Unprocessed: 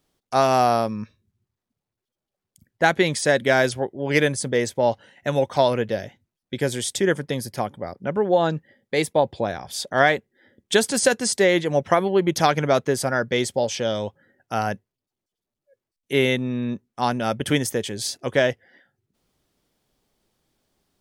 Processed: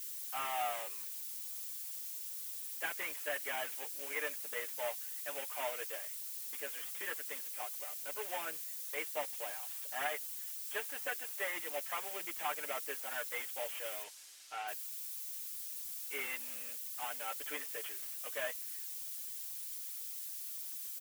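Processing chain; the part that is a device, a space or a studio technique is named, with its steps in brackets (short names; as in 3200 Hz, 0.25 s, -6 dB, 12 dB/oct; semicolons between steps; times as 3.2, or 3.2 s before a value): army field radio (BPF 390–3400 Hz; CVSD 16 kbps; white noise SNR 21 dB); differentiator; comb 6.7 ms, depth 75%; 14.03–14.67 LPF 8400 Hz -> 5100 Hz 12 dB/oct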